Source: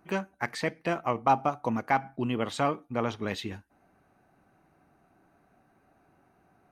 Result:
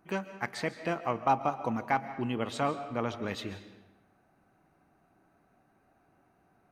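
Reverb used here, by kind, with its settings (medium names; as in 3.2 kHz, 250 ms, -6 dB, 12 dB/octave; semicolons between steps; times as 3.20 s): algorithmic reverb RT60 0.99 s, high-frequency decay 0.85×, pre-delay 100 ms, DRR 11.5 dB; trim -3 dB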